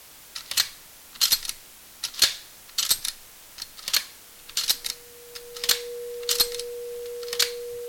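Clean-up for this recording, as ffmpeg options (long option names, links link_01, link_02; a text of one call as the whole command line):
ffmpeg -i in.wav -af "adeclick=threshold=4,bandreject=frequency=480:width=30,afftdn=noise_reduction=25:noise_floor=-48" out.wav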